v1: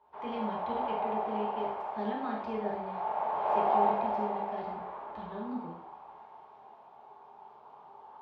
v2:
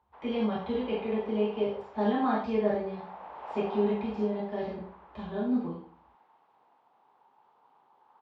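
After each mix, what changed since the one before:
speech: send +9.0 dB; background: send off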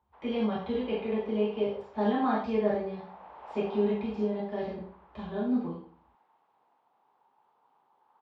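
background -4.5 dB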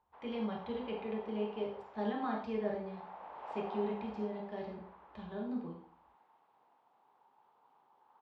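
speech: send -9.5 dB

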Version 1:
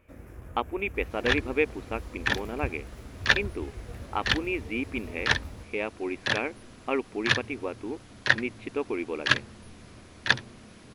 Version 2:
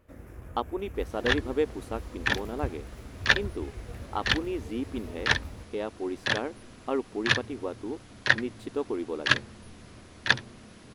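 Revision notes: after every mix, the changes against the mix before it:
speech: remove synth low-pass 2400 Hz, resonance Q 11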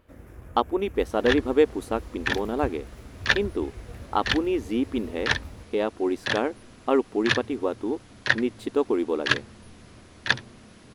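speech +7.5 dB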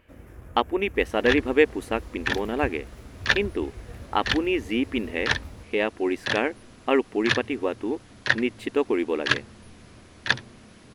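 speech: add band shelf 2200 Hz +11 dB 1 oct

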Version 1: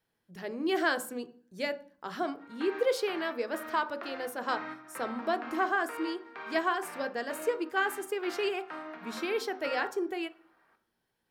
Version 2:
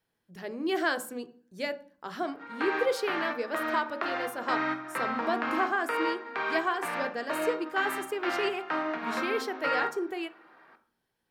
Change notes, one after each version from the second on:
background +11.0 dB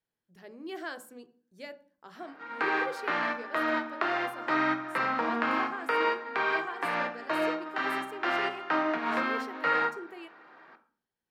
speech -10.5 dB; background +3.0 dB

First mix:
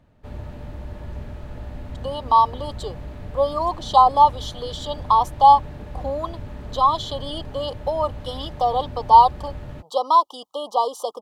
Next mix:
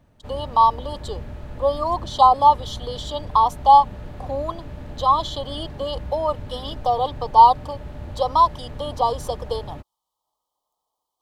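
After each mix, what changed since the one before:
speech: entry -1.75 s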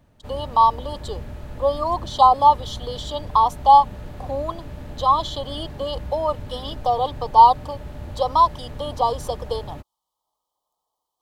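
background: add high shelf 6700 Hz +8.5 dB

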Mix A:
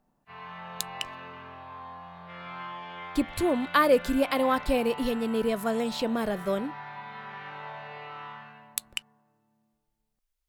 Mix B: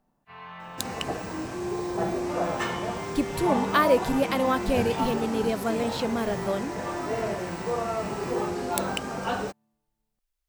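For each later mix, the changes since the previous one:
second sound: unmuted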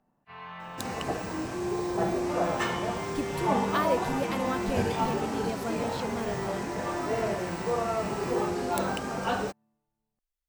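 speech -7.5 dB

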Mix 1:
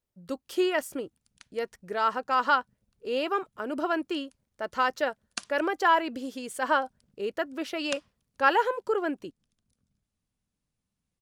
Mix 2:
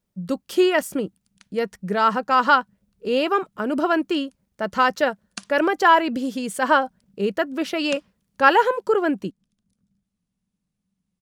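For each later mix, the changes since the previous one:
speech +7.0 dB; master: add bell 190 Hz +14.5 dB 0.47 oct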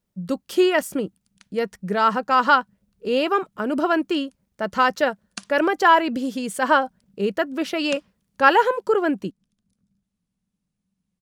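none

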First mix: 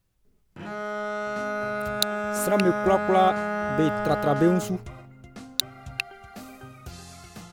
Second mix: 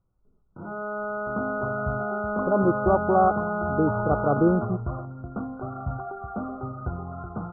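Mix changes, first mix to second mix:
second sound +10.5 dB; master: add brick-wall FIR low-pass 1500 Hz

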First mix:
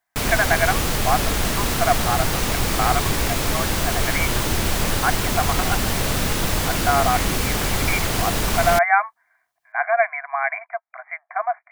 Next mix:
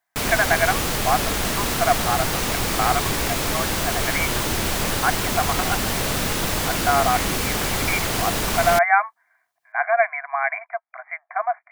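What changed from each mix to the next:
background: add low shelf 120 Hz -6.5 dB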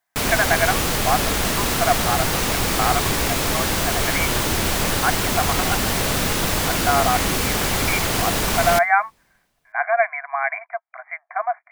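reverb: on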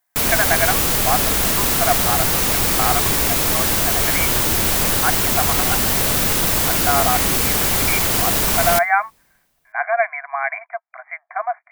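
master: add high shelf 9300 Hz +11 dB

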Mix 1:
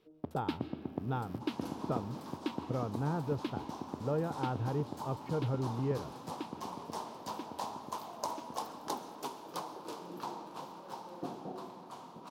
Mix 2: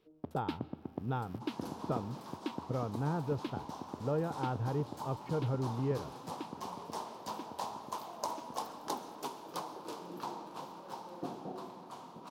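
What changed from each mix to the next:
first sound: send -10.5 dB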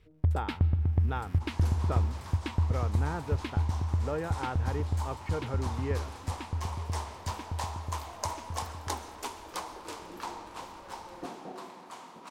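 first sound: remove HPF 240 Hz 24 dB/oct; master: add ten-band EQ 125 Hz -6 dB, 2000 Hz +12 dB, 8000 Hz +9 dB

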